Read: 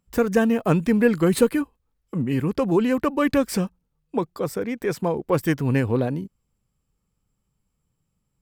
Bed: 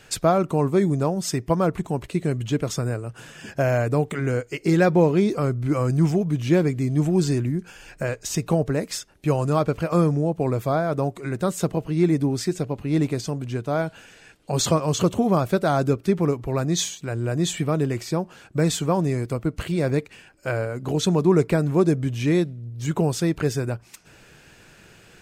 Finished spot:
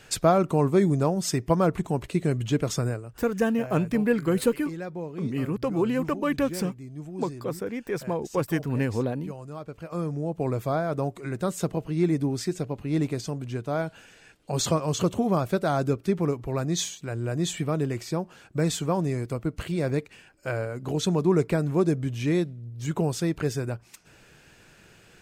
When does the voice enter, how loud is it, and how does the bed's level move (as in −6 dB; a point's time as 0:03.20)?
3.05 s, −5.0 dB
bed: 0:02.86 −1 dB
0:03.31 −17.5 dB
0:09.61 −17.5 dB
0:10.44 −4 dB